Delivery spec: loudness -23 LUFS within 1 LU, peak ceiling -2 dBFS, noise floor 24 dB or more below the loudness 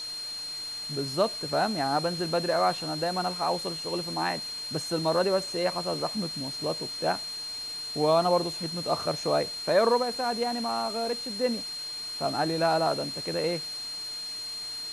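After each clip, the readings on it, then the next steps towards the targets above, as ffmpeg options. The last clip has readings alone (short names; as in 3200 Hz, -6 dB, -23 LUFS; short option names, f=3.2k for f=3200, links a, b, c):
steady tone 4200 Hz; tone level -34 dBFS; noise floor -37 dBFS; noise floor target -53 dBFS; loudness -28.5 LUFS; peak -11.5 dBFS; loudness target -23.0 LUFS
-> -af "bandreject=f=4.2k:w=30"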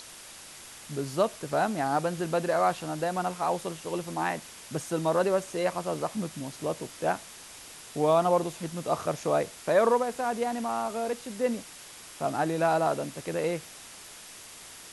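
steady tone none; noise floor -47 dBFS; noise floor target -53 dBFS
-> -af "afftdn=nr=6:nf=-47"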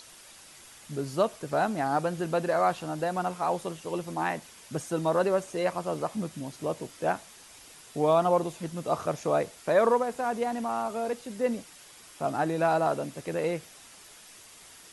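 noise floor -51 dBFS; noise floor target -53 dBFS
-> -af "afftdn=nr=6:nf=-51"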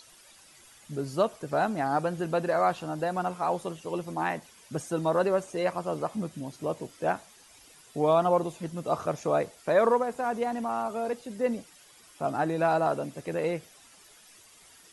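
noise floor -56 dBFS; loudness -29.0 LUFS; peak -11.5 dBFS; loudness target -23.0 LUFS
-> -af "volume=6dB"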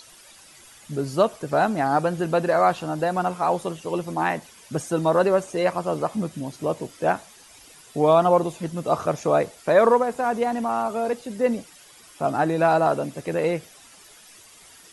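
loudness -23.0 LUFS; peak -5.5 dBFS; noise floor -50 dBFS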